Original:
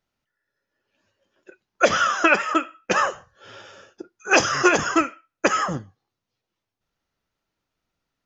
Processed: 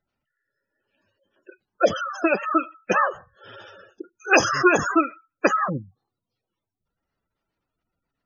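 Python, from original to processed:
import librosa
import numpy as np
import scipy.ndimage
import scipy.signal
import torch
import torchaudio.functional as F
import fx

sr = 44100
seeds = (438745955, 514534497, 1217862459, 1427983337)

y = fx.spec_gate(x, sr, threshold_db=-15, keep='strong')
y = fx.band_shelf(y, sr, hz=1500.0, db=-9.5, octaves=1.7, at=(1.82, 2.42), fade=0.02)
y = y * 10.0 ** (1.0 / 20.0)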